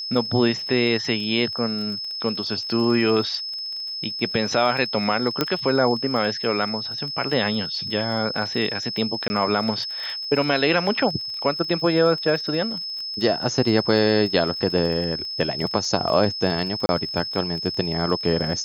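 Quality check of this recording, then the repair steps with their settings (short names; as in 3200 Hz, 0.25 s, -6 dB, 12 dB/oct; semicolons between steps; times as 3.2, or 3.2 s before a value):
crackle 27/s -30 dBFS
tone 5200 Hz -28 dBFS
5.41 pop -5 dBFS
9.28–9.3 gap 20 ms
16.86–16.89 gap 30 ms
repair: de-click; notch 5200 Hz, Q 30; interpolate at 9.28, 20 ms; interpolate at 16.86, 30 ms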